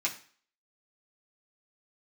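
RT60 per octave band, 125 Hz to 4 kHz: 0.40, 0.45, 0.45, 0.45, 0.45, 0.45 s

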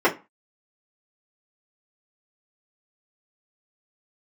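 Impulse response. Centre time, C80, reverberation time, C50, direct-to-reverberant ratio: 14 ms, 23.0 dB, 0.30 s, 15.5 dB, -6.5 dB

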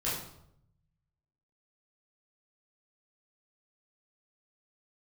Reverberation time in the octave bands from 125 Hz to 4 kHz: 1.5, 0.95, 0.80, 0.70, 0.55, 0.55 s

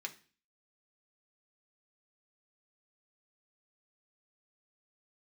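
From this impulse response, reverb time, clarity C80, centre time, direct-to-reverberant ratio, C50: 0.40 s, 20.5 dB, 7 ms, 2.0 dB, 16.0 dB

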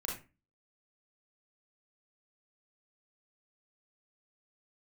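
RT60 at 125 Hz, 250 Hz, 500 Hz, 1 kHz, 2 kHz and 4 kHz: 0.45, 0.45, 0.35, 0.30, 0.30, 0.20 s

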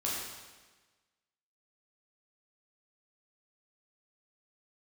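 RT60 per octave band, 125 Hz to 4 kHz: 1.3, 1.4, 1.3, 1.3, 1.3, 1.2 s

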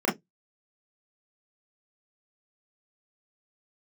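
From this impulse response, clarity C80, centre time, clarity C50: 25.5 dB, 29 ms, 13.5 dB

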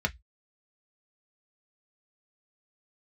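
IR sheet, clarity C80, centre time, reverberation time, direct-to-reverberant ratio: 39.5 dB, 4 ms, 0.10 s, 3.0 dB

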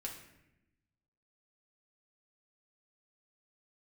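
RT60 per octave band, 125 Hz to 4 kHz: 1.5, 1.3, 1.0, 0.80, 0.95, 0.65 s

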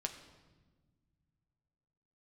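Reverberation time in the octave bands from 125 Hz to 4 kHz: 3.1, 2.6, 1.5, 1.2, 1.1, 1.0 s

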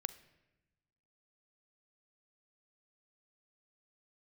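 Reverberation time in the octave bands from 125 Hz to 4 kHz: 1.6, 1.5, 1.1, 0.95, 1.0, 0.80 s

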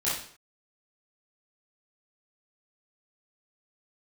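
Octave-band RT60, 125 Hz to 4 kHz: 0.50 s, 0.50 s, 0.55 s, 0.55 s, 0.50 s, n/a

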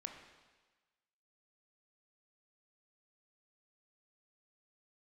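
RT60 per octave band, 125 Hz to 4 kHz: 1.2, 1.2, 1.2, 1.3, 1.3, 1.3 s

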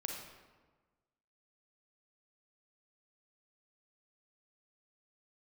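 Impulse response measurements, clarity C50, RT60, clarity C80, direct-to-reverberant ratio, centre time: 2.0 dB, 1.3 s, 5.0 dB, 0.5 dB, 54 ms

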